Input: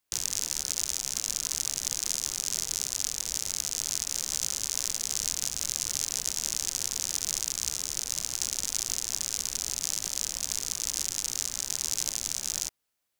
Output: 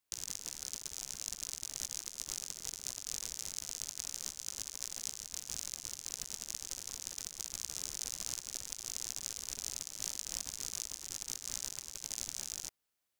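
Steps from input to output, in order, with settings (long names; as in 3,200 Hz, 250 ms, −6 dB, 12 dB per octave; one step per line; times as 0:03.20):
compressor whose output falls as the input rises −35 dBFS, ratio −0.5
level −7.5 dB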